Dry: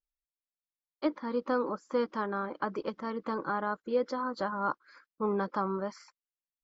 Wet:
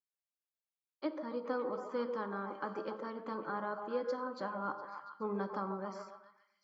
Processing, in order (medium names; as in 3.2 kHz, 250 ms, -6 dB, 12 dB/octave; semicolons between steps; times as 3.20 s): high-pass 110 Hz; repeats whose band climbs or falls 139 ms, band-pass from 560 Hz, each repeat 0.7 oct, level -4 dB; on a send at -10.5 dB: reverberation RT60 0.80 s, pre-delay 3 ms; on the sum: trim -7.5 dB